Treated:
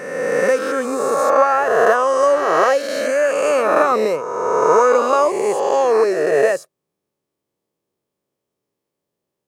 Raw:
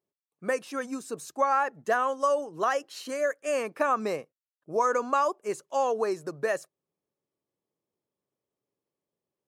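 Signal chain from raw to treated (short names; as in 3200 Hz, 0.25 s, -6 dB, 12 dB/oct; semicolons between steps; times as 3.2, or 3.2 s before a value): spectral swells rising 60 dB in 2.06 s; dynamic EQ 480 Hz, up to +6 dB, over -38 dBFS, Q 2; gain +5 dB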